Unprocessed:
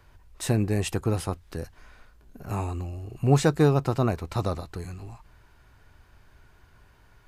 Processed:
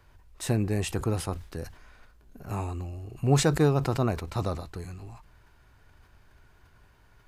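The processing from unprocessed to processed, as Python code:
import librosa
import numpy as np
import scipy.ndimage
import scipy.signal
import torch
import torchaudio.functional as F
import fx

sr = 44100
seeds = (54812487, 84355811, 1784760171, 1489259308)

y = fx.sustainer(x, sr, db_per_s=120.0)
y = y * 10.0 ** (-2.5 / 20.0)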